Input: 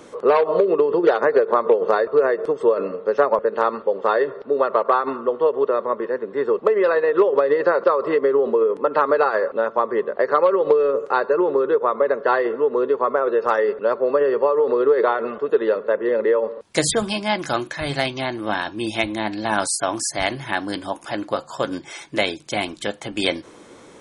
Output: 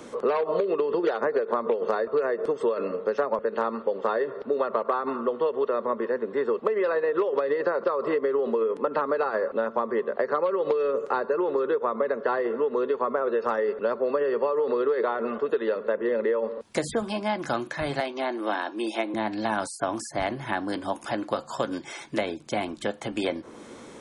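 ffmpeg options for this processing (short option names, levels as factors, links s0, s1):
-filter_complex "[0:a]asettb=1/sr,asplit=3[s0][s1][s2];[s0]atrim=end=18.004[s3];[s1]atrim=start=18:end=19.14,asetpts=PTS-STARTPTS,afade=t=in:d=0.004:c=qsin,afade=t=out:st=1.136:d=0.004:c=qsin,highpass=f=300:w=0.5412,highpass=f=300:w=1.3066[s4];[s2]atrim=start=19.136[s5];[s3][s4]acrossfade=d=0.004:c1=hsin:c2=qsin[s6];[s6][s5]acrossfade=d=0.004:c1=qsin:c2=hsin,equalizer=f=230:t=o:w=0.21:g=7.5,acrossover=split=340|1600[s7][s8][s9];[s7]acompressor=threshold=0.0178:ratio=4[s10];[s8]acompressor=threshold=0.0562:ratio=4[s11];[s9]acompressor=threshold=0.01:ratio=4[s12];[s10][s11][s12]amix=inputs=3:normalize=0"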